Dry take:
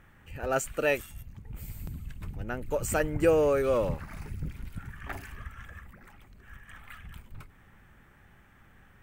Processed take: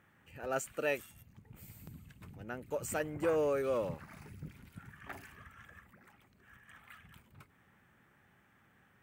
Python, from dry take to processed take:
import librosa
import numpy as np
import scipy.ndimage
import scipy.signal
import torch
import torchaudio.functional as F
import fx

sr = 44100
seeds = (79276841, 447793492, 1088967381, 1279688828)

y = scipy.signal.sosfilt(scipy.signal.butter(2, 120.0, 'highpass', fs=sr, output='sos'), x)
y = fx.transformer_sat(y, sr, knee_hz=700.0, at=(2.93, 3.36))
y = y * 10.0 ** (-7.0 / 20.0)